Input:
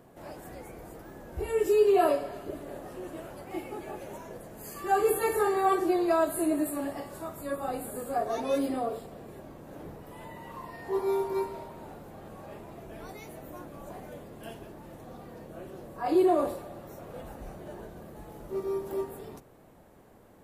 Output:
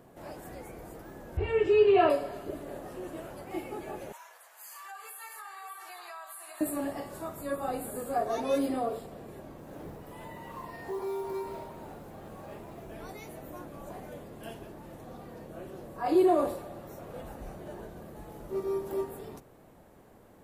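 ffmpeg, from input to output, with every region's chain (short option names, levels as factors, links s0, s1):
-filter_complex "[0:a]asettb=1/sr,asplit=3[s0][s1][s2];[s0]atrim=end=1.374[s3];[s1]atrim=start=1.37:end=2.1,asetpts=PTS-STARTPTS,afade=t=in:d=0.004:c=qsin,afade=t=out:st=0.726:d=0.004:c=qsin,lowpass=f=2800:t=q:w=2,equalizer=f=100:w=1.9:g=12[s4];[s2]atrim=start=2.096[s5];[s3][s4]acrossfade=d=0.004:c1=hsin:c2=qsin[s6];[s6][s5]acrossfade=d=0.004:c1=qsin:c2=hsin,asettb=1/sr,asplit=3[s7][s8][s9];[s7]atrim=end=4.124[s10];[s8]atrim=start=4.12:end=6.61,asetpts=PTS-STARTPTS,afade=t=in:d=0.004:c=qsin,afade=t=out:st=2.486:d=0.004:c=qsin,highpass=f=950:w=0.5412,highpass=f=950:w=1.3066,acompressor=threshold=0.00708:ratio=5:attack=3.2:release=140:knee=1:detection=peak,aecho=1:1:592:0.422,atrim=end_sample=109809[s11];[s9]atrim=start=6.606[s12];[s10][s11]acrossfade=d=0.004:c1=hsin:c2=qsin[s13];[s13][s12]acrossfade=d=0.004:c1=qsin:c2=hsin,asettb=1/sr,asplit=3[s14][s15][s16];[s14]atrim=end=9.574[s17];[s15]atrim=start=9.57:end=12.93,asetpts=PTS-STARTPTS,afade=t=in:d=0.004:c=qsin,afade=t=out:st=3.356:d=0.004:c=qsin,acompressor=threshold=0.0251:ratio=4:attack=3.2:release=140:knee=1:detection=peak,acrusher=bits=7:mode=log:mix=0:aa=0.000001[s18];[s16]atrim=start=12.926[s19];[s17][s18]acrossfade=d=0.004:c1=hsin:c2=qsin[s20];[s20][s19]acrossfade=d=0.004:c1=qsin:c2=hsin"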